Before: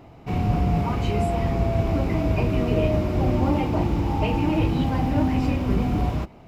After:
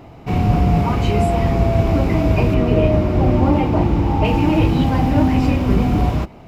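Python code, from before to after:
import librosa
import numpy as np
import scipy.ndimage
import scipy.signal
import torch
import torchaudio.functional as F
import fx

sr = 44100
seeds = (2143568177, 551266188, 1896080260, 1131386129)

y = fx.high_shelf(x, sr, hz=4200.0, db=-8.5, at=(2.54, 4.25))
y = y * librosa.db_to_amplitude(6.5)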